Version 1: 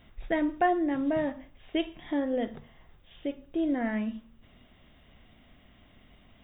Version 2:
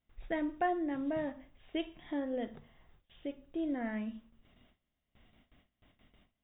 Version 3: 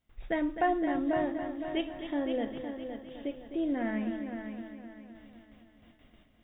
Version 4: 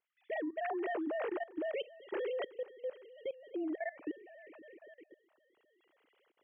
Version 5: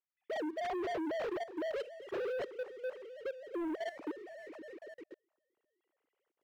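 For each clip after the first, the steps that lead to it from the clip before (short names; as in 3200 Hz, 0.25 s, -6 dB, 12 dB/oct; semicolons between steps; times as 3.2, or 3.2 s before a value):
gate with hold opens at -46 dBFS; gain -7 dB
multi-head echo 0.257 s, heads first and second, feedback 47%, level -10 dB; gain +4 dB
sine-wave speech; level quantiser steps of 19 dB; gain +2 dB
high shelf 2700 Hz -11 dB; sample leveller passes 3; gain -4.5 dB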